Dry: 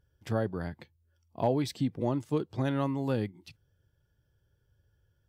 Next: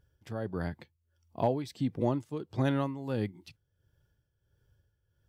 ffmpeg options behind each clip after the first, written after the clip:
ffmpeg -i in.wav -af "tremolo=f=1.5:d=0.69,volume=2dB" out.wav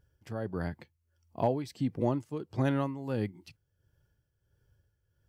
ffmpeg -i in.wav -af "equalizer=frequency=3600:width_type=o:width=0.21:gain=-6.5" out.wav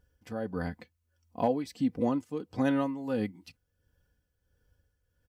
ffmpeg -i in.wav -af "aecho=1:1:4:0.63" out.wav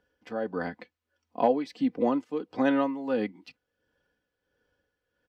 ffmpeg -i in.wav -filter_complex "[0:a]acrossover=split=220 4700:gain=0.0891 1 0.126[link_01][link_02][link_03];[link_01][link_02][link_03]amix=inputs=3:normalize=0,volume=5dB" out.wav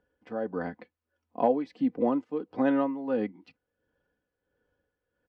ffmpeg -i in.wav -af "lowpass=frequency=1300:poles=1" out.wav

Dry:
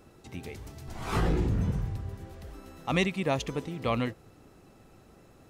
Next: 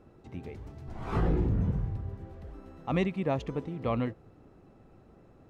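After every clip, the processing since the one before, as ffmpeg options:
ffmpeg -i in.wav -af "lowpass=frequency=1000:poles=1" out.wav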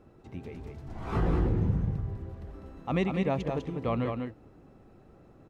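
ffmpeg -i in.wav -af "aecho=1:1:171|199:0.141|0.562" out.wav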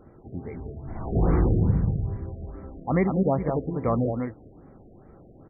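ffmpeg -i in.wav -af "afftfilt=real='re*lt(b*sr/1024,720*pow(2400/720,0.5+0.5*sin(2*PI*2.4*pts/sr)))':imag='im*lt(b*sr/1024,720*pow(2400/720,0.5+0.5*sin(2*PI*2.4*pts/sr)))':win_size=1024:overlap=0.75,volume=5.5dB" out.wav

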